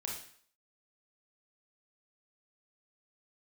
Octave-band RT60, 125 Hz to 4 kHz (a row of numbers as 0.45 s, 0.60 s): 0.45 s, 0.50 s, 0.55 s, 0.55 s, 0.55 s, 0.55 s